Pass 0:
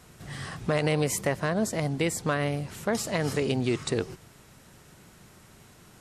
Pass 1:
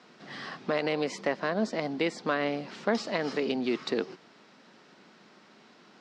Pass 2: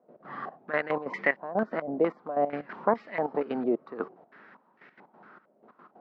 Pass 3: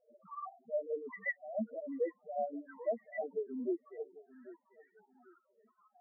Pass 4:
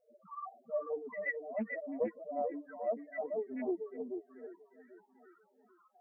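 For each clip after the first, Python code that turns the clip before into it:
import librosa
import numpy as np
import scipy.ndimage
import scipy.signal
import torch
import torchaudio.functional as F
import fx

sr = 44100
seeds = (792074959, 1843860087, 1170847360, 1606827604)

y1 = scipy.signal.sosfilt(scipy.signal.ellip(3, 1.0, 60, [220.0, 4900.0], 'bandpass', fs=sr, output='sos'), x)
y1 = fx.rider(y1, sr, range_db=10, speed_s=0.5)
y2 = fx.low_shelf(y1, sr, hz=140.0, db=-3.5)
y2 = fx.step_gate(y2, sr, bpm=184, pattern='.x.xxx...x', floor_db=-12.0, edge_ms=4.5)
y2 = fx.filter_held_lowpass(y2, sr, hz=4.4, low_hz=600.0, high_hz=2000.0)
y3 = fx.spec_topn(y2, sr, count=2)
y3 = fx.echo_feedback(y3, sr, ms=792, feedback_pct=29, wet_db=-19.0)
y3 = fx.rider(y3, sr, range_db=4, speed_s=0.5)
y3 = y3 * librosa.db_to_amplitude(-4.0)
y4 = y3 + 10.0 ** (-6.0 / 20.0) * np.pad(y3, (int(439 * sr / 1000.0), 0))[:len(y3)]
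y4 = fx.doppler_dist(y4, sr, depth_ms=0.23)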